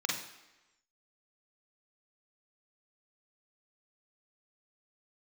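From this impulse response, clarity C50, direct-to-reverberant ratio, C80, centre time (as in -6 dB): 4.0 dB, -2.5 dB, 8.5 dB, 45 ms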